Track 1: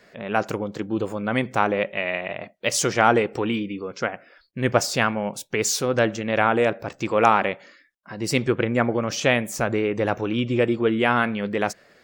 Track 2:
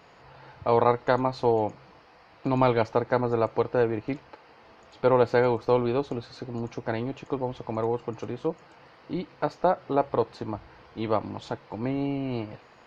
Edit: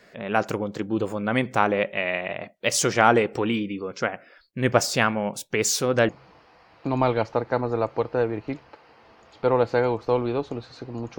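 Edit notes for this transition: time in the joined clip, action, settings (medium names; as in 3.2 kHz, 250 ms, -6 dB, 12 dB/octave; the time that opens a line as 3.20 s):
track 1
6.09 s: go over to track 2 from 1.69 s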